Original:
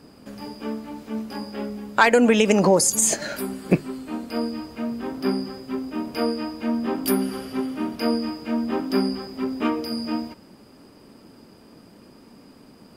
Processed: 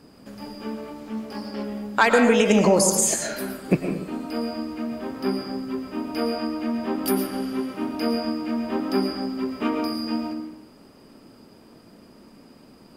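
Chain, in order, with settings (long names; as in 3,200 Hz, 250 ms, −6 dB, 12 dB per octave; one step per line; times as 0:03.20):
on a send at −4 dB: convolution reverb RT60 0.80 s, pre-delay 75 ms
0:01.00–0:01.64: on the sum: highs frequency-modulated by the lows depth 0.12 ms
level −2 dB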